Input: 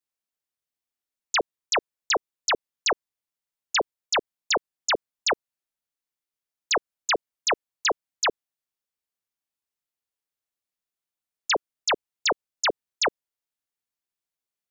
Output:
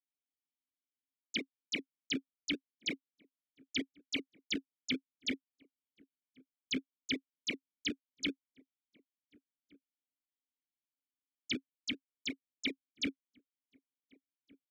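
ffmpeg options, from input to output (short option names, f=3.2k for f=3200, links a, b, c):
-filter_complex "[0:a]highshelf=f=3.6k:g=8,asettb=1/sr,asplit=3[a][b][c];[a]atrim=end=11.894[d];[b]atrim=start=11.89:end=12.65,asetpts=PTS-STARTPTS,afade=t=in:d=0.004:c=qsin,afade=t=out:st=0.756:d=0.004:c=qsin,acrossover=split=920|2100[e][f][g];[e]acompressor=threshold=-33dB:ratio=4[h];[f]acompressor=threshold=-30dB:ratio=4[i];[g]acompressor=threshold=-20dB:ratio=4[j];[h][i][j]amix=inputs=3:normalize=0[k];[c]atrim=start=12.646[l];[d][k]acrossfade=d=0.004:c1=hsin:c2=qsin[m];[m][l]acrossfade=d=0.004:c1=qsin:c2=hsin,acrossover=split=150|490|1900[n][o][p][q];[p]acrusher=samples=36:mix=1:aa=0.000001:lfo=1:lforange=21.6:lforate=3.3[r];[n][o][r][q]amix=inputs=4:normalize=0,asplit=3[s][t][u];[s]bandpass=f=270:t=q:w=8,volume=0dB[v];[t]bandpass=f=2.29k:t=q:w=8,volume=-6dB[w];[u]bandpass=f=3.01k:t=q:w=8,volume=-9dB[x];[v][w][x]amix=inputs=3:normalize=0,asplit=2[y][z];[z]adelay=1458,volume=-25dB,highshelf=f=4k:g=-32.8[aa];[y][aa]amix=inputs=2:normalize=0"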